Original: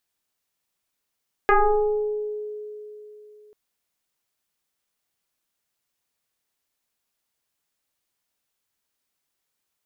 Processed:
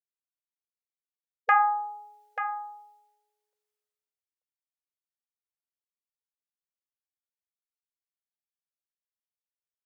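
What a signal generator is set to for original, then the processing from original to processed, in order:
two-operator FM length 2.04 s, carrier 422 Hz, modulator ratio 0.97, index 3.6, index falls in 1.20 s exponential, decay 3.35 s, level −12.5 dB
downward expander −39 dBFS
linear-phase brick-wall high-pass 470 Hz
single-tap delay 887 ms −10.5 dB

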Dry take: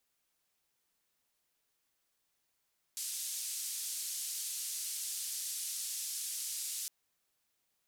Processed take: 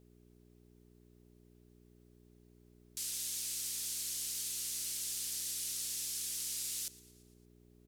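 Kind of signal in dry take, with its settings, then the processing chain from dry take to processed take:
band-limited noise 5,000–11,000 Hz, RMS −39.5 dBFS 3.91 s
parametric band 560 Hz +14 dB 0.57 octaves
hum with harmonics 60 Hz, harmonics 7, −63 dBFS −2 dB per octave
echo with shifted repeats 115 ms, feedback 59%, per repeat −89 Hz, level −20.5 dB

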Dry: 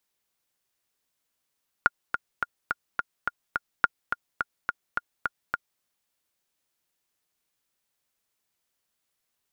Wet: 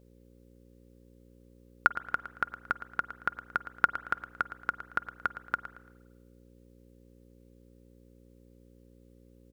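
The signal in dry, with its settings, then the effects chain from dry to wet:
click track 212 BPM, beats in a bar 7, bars 2, 1,420 Hz, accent 7.5 dB −5 dBFS
hum with harmonics 60 Hz, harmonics 9, −59 dBFS −3 dB per octave
repeating echo 113 ms, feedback 31%, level −13.5 dB
spring reverb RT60 1.2 s, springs 45/50 ms, chirp 50 ms, DRR 18.5 dB

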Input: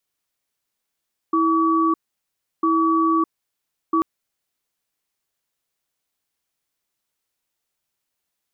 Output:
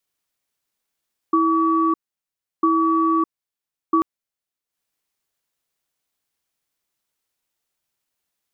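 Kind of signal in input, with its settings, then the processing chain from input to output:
tone pair in a cadence 326 Hz, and 1,140 Hz, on 0.61 s, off 0.69 s, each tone −18 dBFS 2.69 s
transient designer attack +3 dB, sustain −9 dB

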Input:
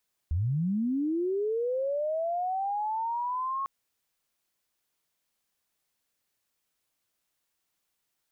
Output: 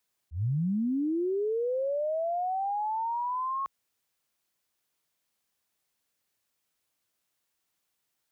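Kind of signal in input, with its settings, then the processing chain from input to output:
glide linear 72 Hz → 1,100 Hz −24.5 dBFS → −28.5 dBFS 3.35 s
high-pass filter 43 Hz
volume swells 127 ms

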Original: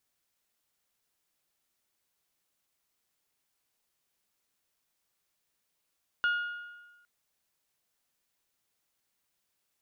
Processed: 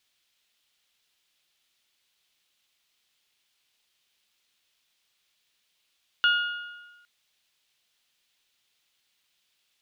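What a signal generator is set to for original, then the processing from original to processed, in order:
struck metal bell, length 0.81 s, lowest mode 1,430 Hz, decay 1.25 s, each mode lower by 11.5 dB, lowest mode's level −23 dB
parametric band 3,300 Hz +14.5 dB 1.7 octaves

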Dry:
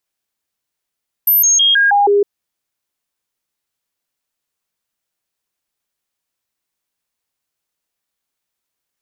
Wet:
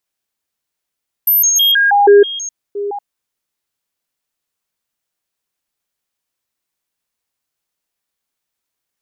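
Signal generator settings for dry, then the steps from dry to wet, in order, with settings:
stepped sweep 13,000 Hz down, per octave 1, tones 6, 0.16 s, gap 0.00 s −8.5 dBFS
delay that plays each chunk backwards 498 ms, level −12 dB
dynamic equaliser 420 Hz, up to +6 dB, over −26 dBFS, Q 1.5

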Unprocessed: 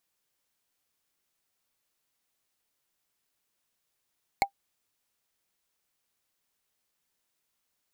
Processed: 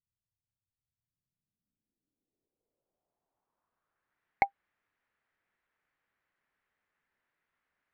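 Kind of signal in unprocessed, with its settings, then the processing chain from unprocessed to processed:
struck wood, lowest mode 795 Hz, decay 0.09 s, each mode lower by 3 dB, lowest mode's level −15 dB
low-pass filter sweep 110 Hz → 1,800 Hz, 0:00.92–0:04.24

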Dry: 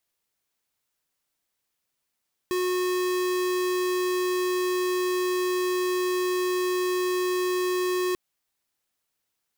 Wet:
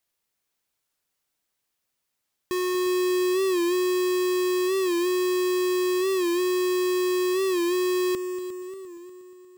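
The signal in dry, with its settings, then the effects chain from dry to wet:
tone square 364 Hz −25.5 dBFS 5.64 s
on a send: echo machine with several playback heads 118 ms, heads second and third, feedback 57%, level −13 dB
on the sum: wow of a warped record 45 rpm, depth 100 cents

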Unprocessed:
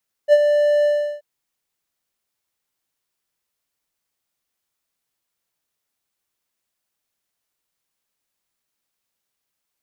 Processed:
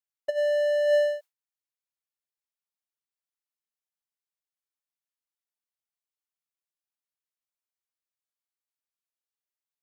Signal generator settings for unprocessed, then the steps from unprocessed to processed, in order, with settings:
note with an ADSR envelope triangle 589 Hz, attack 48 ms, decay 45 ms, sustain −7 dB, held 0.57 s, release 361 ms −4.5 dBFS
high-pass filter 610 Hz
compressor whose output falls as the input rises −22 dBFS, ratio −0.5
noise gate with hold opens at −31 dBFS

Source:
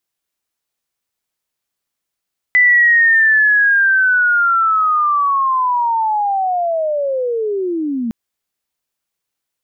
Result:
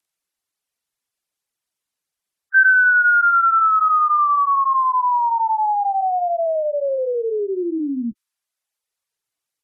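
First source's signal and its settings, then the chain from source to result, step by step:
glide linear 2,000 Hz → 220 Hz −7 dBFS → −17 dBFS 5.56 s
partials spread apart or drawn together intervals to 88%
gate on every frequency bin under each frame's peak −20 dB strong
reverb reduction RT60 0.86 s

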